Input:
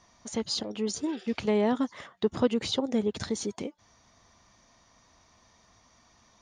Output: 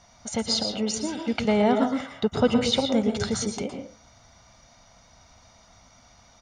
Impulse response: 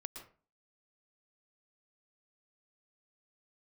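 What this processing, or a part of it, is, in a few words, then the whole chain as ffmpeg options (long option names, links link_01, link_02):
microphone above a desk: -filter_complex "[0:a]aecho=1:1:1.4:0.55[link_01];[1:a]atrim=start_sample=2205[link_02];[link_01][link_02]afir=irnorm=-1:irlink=0,volume=9dB"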